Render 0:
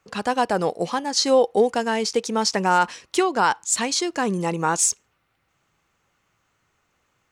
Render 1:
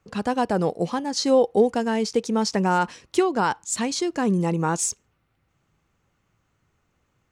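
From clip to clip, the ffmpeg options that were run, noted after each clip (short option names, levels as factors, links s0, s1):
-af "lowshelf=f=390:g=12,volume=0.531"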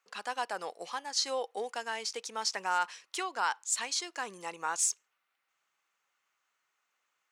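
-af "highpass=1100,volume=0.668"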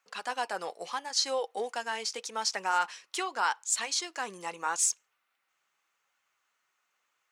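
-af "flanger=delay=1.2:depth=4.4:regen=-64:speed=0.81:shape=sinusoidal,volume=2.11"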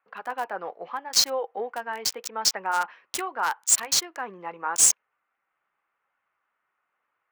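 -filter_complex "[0:a]highshelf=f=3500:g=8,acrossover=split=800|2000[s0][s1][s2];[s2]acrusher=bits=3:mix=0:aa=0.5[s3];[s0][s1][s3]amix=inputs=3:normalize=0,volume=1.33"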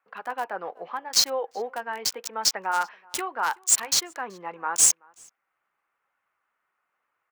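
-filter_complex "[0:a]asplit=2[s0][s1];[s1]adelay=379,volume=0.0501,highshelf=f=4000:g=-8.53[s2];[s0][s2]amix=inputs=2:normalize=0"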